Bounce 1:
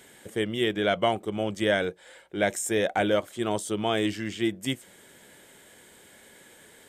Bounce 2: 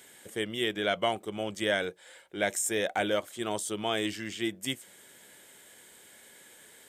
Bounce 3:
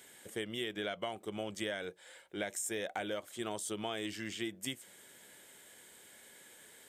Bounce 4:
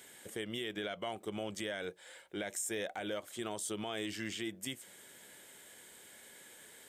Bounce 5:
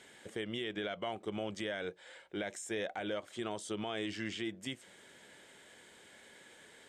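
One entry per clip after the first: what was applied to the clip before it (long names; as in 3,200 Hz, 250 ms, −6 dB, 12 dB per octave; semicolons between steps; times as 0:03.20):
spectral tilt +1.5 dB per octave; level −3.5 dB
downward compressor 10 to 1, threshold −31 dBFS, peak gain reduction 9.5 dB; level −3 dB
brickwall limiter −29.5 dBFS, peak gain reduction 7 dB; level +1.5 dB
high-frequency loss of the air 85 metres; level +1.5 dB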